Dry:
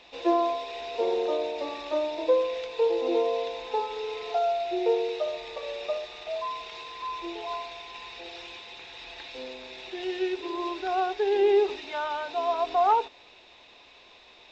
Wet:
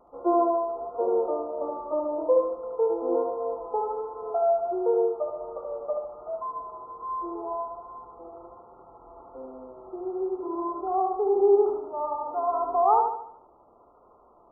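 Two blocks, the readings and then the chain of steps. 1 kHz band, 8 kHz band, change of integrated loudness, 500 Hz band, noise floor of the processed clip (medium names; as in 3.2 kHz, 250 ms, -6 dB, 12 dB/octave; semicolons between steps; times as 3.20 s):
+1.5 dB, no reading, +1.5 dB, +1.5 dB, -57 dBFS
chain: brick-wall FIR low-pass 1.4 kHz; vibrato 1.3 Hz 28 cents; thinning echo 74 ms, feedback 48%, high-pass 160 Hz, level -4 dB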